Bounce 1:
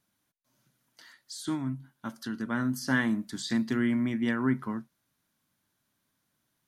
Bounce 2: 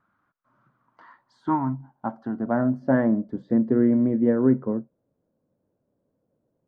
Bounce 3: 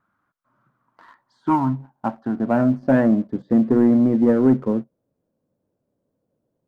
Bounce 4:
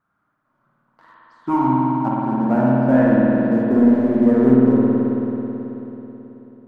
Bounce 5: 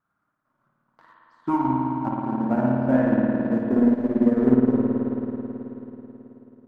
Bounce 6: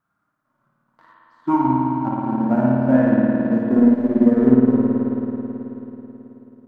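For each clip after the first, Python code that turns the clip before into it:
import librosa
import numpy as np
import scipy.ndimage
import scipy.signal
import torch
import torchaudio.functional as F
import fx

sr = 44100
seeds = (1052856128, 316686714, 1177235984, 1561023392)

y1 = fx.filter_sweep_lowpass(x, sr, from_hz=1300.0, to_hz=510.0, start_s=0.44, end_s=3.45, q=5.1)
y1 = fx.dynamic_eq(y1, sr, hz=1700.0, q=1.3, threshold_db=-47.0, ratio=4.0, max_db=7)
y1 = F.gain(torch.from_numpy(y1), 5.0).numpy()
y2 = fx.leveller(y1, sr, passes=1)
y2 = F.gain(torch.from_numpy(y2), 1.5).numpy()
y3 = fx.rev_spring(y2, sr, rt60_s=3.7, pass_ms=(54,), chirp_ms=30, drr_db=-5.5)
y3 = F.gain(torch.from_numpy(y3), -3.5).numpy()
y4 = fx.transient(y3, sr, attack_db=5, sustain_db=-7)
y4 = F.gain(torch.from_numpy(y4), -6.0).numpy()
y5 = fx.hpss(y4, sr, part='harmonic', gain_db=7)
y5 = F.gain(torch.from_numpy(y5), -2.0).numpy()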